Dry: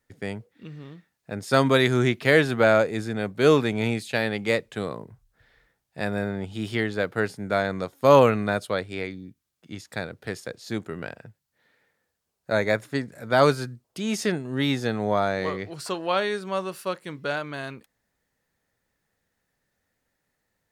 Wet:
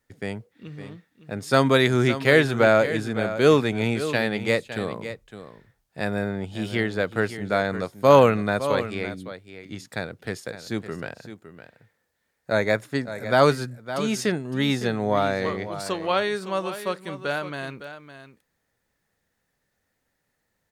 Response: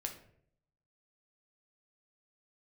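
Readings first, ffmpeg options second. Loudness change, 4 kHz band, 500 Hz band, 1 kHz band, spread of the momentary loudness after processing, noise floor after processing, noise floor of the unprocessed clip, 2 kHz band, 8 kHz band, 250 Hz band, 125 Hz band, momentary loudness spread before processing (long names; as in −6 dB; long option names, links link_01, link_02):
+1.0 dB, +1.5 dB, +1.5 dB, +1.5 dB, 19 LU, −76 dBFS, −79 dBFS, +1.5 dB, +1.5 dB, +1.0 dB, +1.5 dB, 17 LU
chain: -af "aecho=1:1:560:0.251,volume=1dB"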